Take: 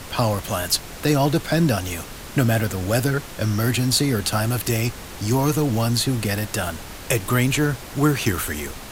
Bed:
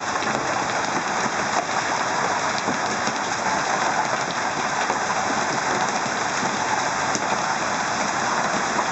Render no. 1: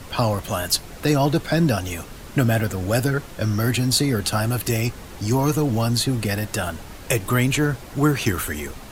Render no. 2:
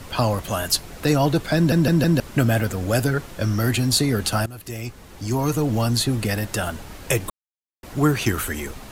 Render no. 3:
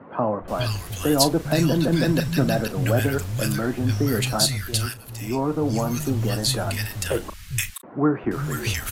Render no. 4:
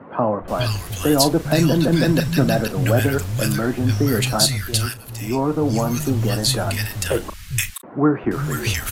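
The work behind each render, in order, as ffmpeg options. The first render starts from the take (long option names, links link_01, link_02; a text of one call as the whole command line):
ffmpeg -i in.wav -af "afftdn=noise_reduction=6:noise_floor=-37" out.wav
ffmpeg -i in.wav -filter_complex "[0:a]asplit=8[link_01][link_02][link_03][link_04][link_05][link_06][link_07][link_08];[link_01]atrim=end=1.722[link_09];[link_02]atrim=start=1.558:end=1.722[link_10];[link_03]atrim=start=1.558:end=1.722[link_11];[link_04]atrim=start=1.558:end=1.722[link_12];[link_05]atrim=start=2.198:end=4.46,asetpts=PTS-STARTPTS,afade=type=out:start_time=2.258:duration=0.004:curve=hsin:silence=0.133352[link_13];[link_06]atrim=start=4.46:end=7.3,asetpts=PTS-STARTPTS,afade=type=in:duration=1.32:silence=0.133352,afade=type=out:start_time=2.836:duration=0.004:curve=hsin[link_14];[link_07]atrim=start=7.3:end=7.83,asetpts=PTS-STARTPTS,volume=0[link_15];[link_08]atrim=start=7.83,asetpts=PTS-STARTPTS,afade=type=in:duration=0.004:curve=hsin[link_16];[link_09][link_10]acrossfade=duration=0.004:curve1=hsin:curve2=hsin[link_17];[link_17][link_11]acrossfade=duration=0.004:curve1=hsin:curve2=hsin[link_18];[link_18][link_12]acrossfade=duration=0.004:curve1=hsin:curve2=hsin[link_19];[link_13][link_14][link_15][link_16]concat=n=4:v=0:a=1[link_20];[link_19][link_20]acrossfade=duration=0.004:curve1=hsin:curve2=hsin" out.wav
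ffmpeg -i in.wav -filter_complex "[0:a]asplit=2[link_01][link_02];[link_02]adelay=37,volume=-13.5dB[link_03];[link_01][link_03]amix=inputs=2:normalize=0,acrossover=split=150|1500[link_04][link_05][link_06];[link_04]adelay=400[link_07];[link_06]adelay=480[link_08];[link_07][link_05][link_08]amix=inputs=3:normalize=0" out.wav
ffmpeg -i in.wav -af "volume=3.5dB,alimiter=limit=-3dB:level=0:latency=1" out.wav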